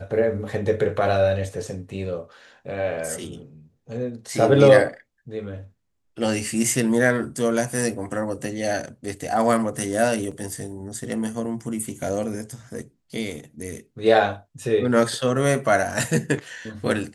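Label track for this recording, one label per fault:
10.310000	10.310000	dropout 5 ms

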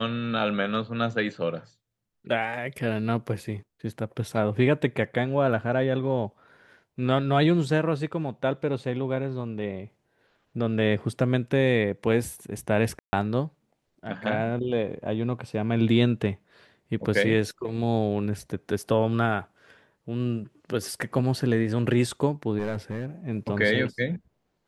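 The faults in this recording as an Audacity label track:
12.990000	13.130000	dropout 140 ms
22.580000	23.060000	clipped -24 dBFS

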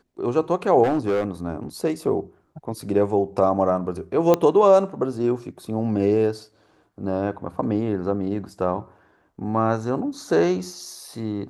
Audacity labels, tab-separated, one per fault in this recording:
0.830000	1.250000	clipped -17 dBFS
4.340000	4.340000	pop -6 dBFS

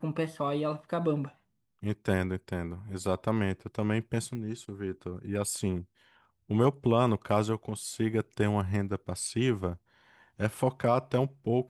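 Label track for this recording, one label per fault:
4.350000	4.350000	pop -28 dBFS

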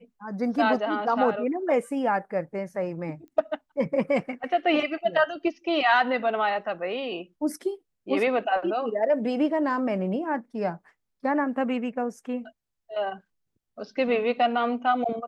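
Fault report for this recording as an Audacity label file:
3.280000	3.280000	pop -39 dBFS

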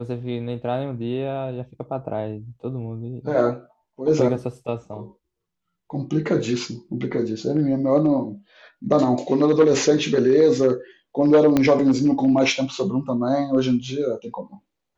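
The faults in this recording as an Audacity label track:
11.570000	11.570000	pop -6 dBFS

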